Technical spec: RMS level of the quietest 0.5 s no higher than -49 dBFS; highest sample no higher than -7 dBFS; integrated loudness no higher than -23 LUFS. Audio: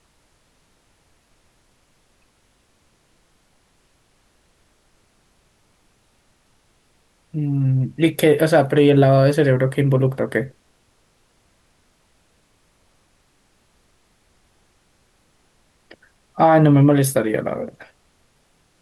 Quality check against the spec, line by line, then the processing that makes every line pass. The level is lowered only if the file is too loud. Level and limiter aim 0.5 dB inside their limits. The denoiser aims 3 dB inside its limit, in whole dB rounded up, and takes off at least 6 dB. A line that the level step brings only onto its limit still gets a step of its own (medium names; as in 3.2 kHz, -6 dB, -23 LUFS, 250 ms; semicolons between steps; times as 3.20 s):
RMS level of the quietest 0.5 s -61 dBFS: pass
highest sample -4.0 dBFS: fail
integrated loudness -17.0 LUFS: fail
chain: trim -6.5 dB